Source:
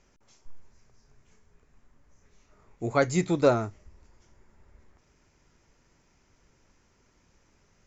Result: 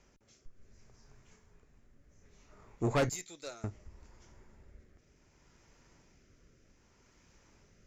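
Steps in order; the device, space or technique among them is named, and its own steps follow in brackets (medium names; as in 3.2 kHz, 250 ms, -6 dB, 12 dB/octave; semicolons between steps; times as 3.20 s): 3.09–3.64 s: differentiator; overdriven rotary cabinet (valve stage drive 27 dB, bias 0.5; rotary cabinet horn 0.65 Hz); trim +4.5 dB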